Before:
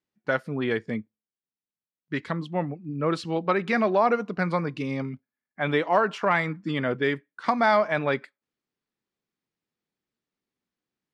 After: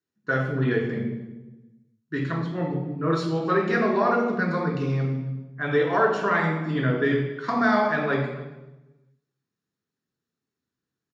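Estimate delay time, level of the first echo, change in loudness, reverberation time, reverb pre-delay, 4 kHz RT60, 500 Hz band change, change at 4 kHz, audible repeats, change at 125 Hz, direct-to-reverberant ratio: 0.278 s, -21.5 dB, +1.5 dB, 1.1 s, 3 ms, 0.85 s, +1.0 dB, -1.5 dB, 1, +6.5 dB, -0.5 dB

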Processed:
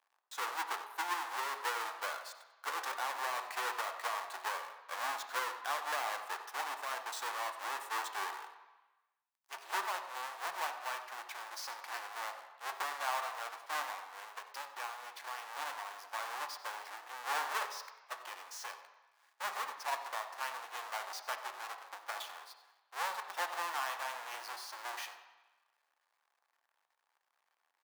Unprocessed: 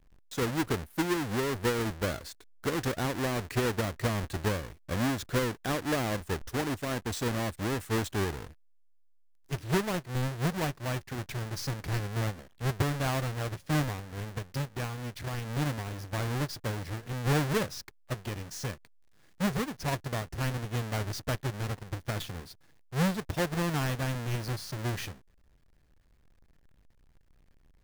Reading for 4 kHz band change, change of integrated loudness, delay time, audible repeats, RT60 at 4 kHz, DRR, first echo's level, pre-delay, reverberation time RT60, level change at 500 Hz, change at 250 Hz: -4.5 dB, -7.0 dB, 94 ms, 1, 1.1 s, 5.5 dB, -15.5 dB, 3 ms, 1.0 s, -14.0 dB, -31.5 dB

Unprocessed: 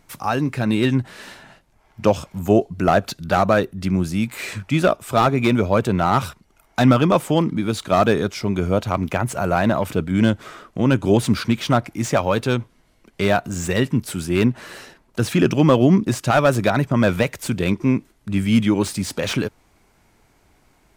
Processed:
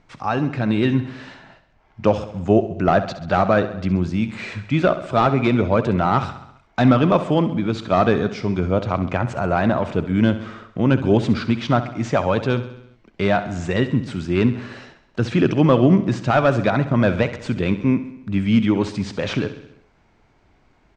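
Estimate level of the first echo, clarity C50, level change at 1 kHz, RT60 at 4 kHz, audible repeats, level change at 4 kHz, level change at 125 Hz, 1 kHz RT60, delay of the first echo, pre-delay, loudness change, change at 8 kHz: -13.0 dB, none, -0.5 dB, none, 5, -3.5 dB, 0.0 dB, none, 66 ms, none, 0.0 dB, under -10 dB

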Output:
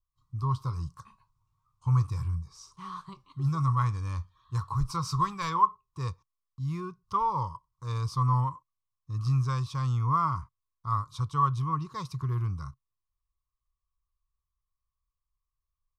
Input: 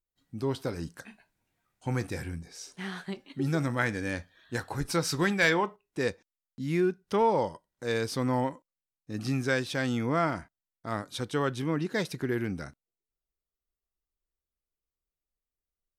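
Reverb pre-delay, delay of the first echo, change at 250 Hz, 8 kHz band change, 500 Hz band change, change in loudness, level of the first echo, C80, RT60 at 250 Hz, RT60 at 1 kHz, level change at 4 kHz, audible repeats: none, none, -7.5 dB, -7.5 dB, -16.5 dB, +0.5 dB, none, none, none, none, -8.0 dB, none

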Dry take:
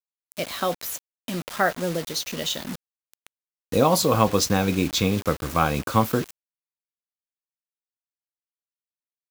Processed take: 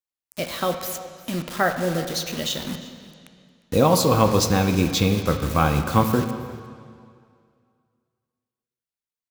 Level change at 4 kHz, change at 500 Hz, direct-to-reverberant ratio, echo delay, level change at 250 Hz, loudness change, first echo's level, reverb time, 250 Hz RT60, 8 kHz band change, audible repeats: +0.5 dB, +1.5 dB, 7.0 dB, 0.354 s, +2.5 dB, +1.5 dB, -20.0 dB, 2.2 s, 2.2 s, 0.0 dB, 1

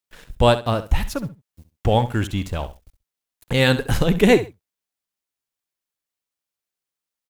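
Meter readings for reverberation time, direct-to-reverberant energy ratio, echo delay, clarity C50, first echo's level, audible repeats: none, none, 66 ms, none, -13.5 dB, 2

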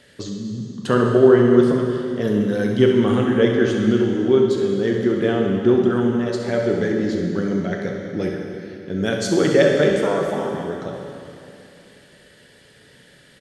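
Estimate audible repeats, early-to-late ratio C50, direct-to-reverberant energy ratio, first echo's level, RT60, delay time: 1, 1.5 dB, 0.0 dB, -9.5 dB, 2.7 s, 67 ms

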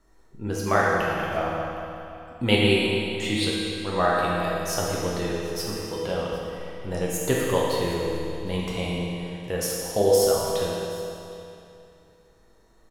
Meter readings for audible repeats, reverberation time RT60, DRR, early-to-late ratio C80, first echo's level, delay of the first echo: 1, 2.8 s, -5.5 dB, -0.5 dB, -20.0 dB, 0.763 s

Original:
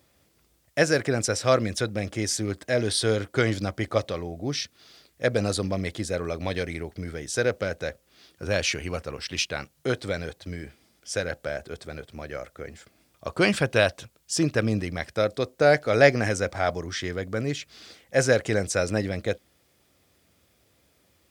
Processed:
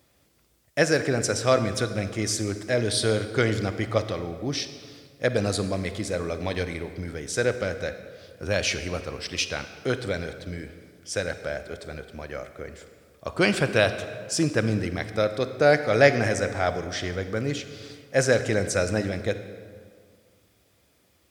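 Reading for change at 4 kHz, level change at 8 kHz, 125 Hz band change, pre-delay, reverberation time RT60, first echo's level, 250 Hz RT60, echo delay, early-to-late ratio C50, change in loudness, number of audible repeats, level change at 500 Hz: +0.5 dB, +0.5 dB, +0.5 dB, 33 ms, 1.9 s, none, 2.1 s, none, 10.5 dB, +0.5 dB, none, +0.5 dB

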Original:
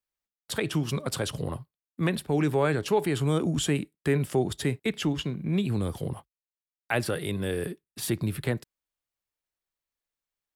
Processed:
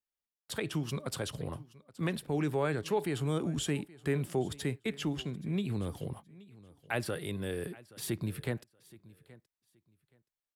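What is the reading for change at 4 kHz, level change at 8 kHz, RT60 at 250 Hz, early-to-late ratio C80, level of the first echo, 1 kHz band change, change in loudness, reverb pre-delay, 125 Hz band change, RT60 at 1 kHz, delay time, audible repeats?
-6.5 dB, -6.5 dB, none, none, -21.0 dB, -6.5 dB, -6.5 dB, none, -6.5 dB, none, 0.824 s, 2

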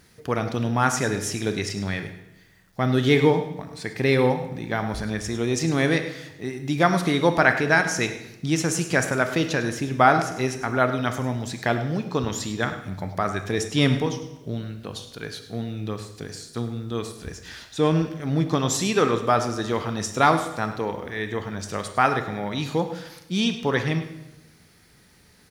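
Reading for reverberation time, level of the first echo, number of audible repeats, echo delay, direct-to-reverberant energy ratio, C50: 0.95 s, -14.0 dB, 1, 0.103 s, 7.0 dB, 8.5 dB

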